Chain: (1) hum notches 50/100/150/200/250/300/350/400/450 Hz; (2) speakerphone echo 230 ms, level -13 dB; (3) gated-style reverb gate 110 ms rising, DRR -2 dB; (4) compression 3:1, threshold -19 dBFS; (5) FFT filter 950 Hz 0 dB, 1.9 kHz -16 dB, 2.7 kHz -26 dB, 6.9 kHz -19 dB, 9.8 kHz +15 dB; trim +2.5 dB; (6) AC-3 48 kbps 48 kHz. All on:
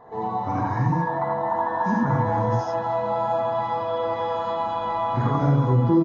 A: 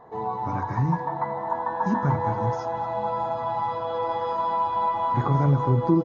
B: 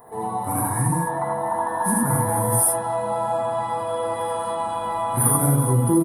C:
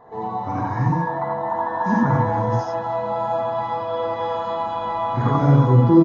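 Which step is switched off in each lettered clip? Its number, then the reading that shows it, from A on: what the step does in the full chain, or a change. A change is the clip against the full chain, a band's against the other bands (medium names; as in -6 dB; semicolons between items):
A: 3, 1 kHz band +3.0 dB; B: 6, crest factor change +4.0 dB; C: 4, momentary loudness spread change +4 LU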